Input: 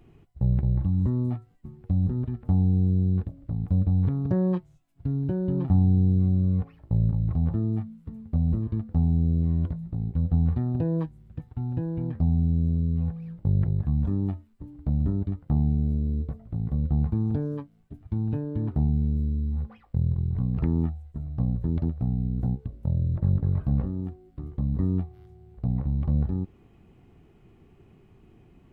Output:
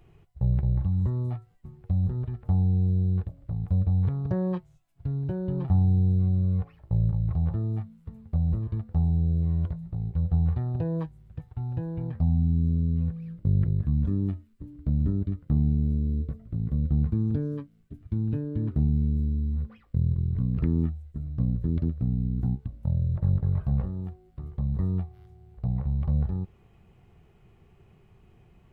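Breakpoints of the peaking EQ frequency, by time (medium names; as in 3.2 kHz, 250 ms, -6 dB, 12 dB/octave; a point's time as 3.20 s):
peaking EQ -12 dB 0.65 oct
12.08 s 260 Hz
12.77 s 800 Hz
22.14 s 800 Hz
23.08 s 280 Hz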